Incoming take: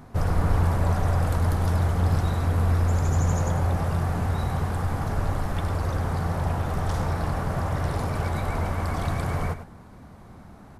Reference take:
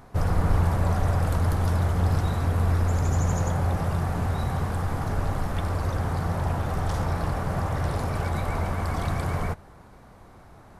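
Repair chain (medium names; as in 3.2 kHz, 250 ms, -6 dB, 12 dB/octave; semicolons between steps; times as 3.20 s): noise print and reduce 6 dB; inverse comb 102 ms -11.5 dB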